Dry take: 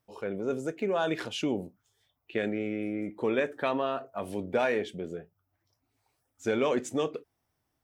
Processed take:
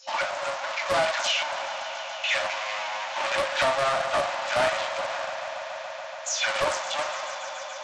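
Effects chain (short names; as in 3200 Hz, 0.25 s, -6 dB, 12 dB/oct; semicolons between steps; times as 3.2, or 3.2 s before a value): spectral delay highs early, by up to 0.167 s; gate -56 dBFS, range -52 dB; FDN reverb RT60 0.56 s, low-frequency decay 1.55×, high-frequency decay 0.75×, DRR 2.5 dB; compressor 2:1, threshold -35 dBFS, peak gain reduction 9 dB; power-law curve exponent 0.35; FFT band-pass 530–7100 Hz; on a send: swelling echo 0.142 s, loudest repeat 5, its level -17 dB; on the sum: Doppler distortion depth 0.28 ms; gain +5.5 dB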